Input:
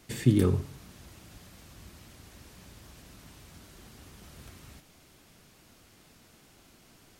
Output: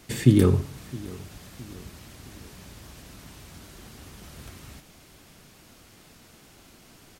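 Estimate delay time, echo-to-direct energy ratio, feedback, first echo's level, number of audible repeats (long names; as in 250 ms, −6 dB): 665 ms, −19.0 dB, 45%, −20.0 dB, 3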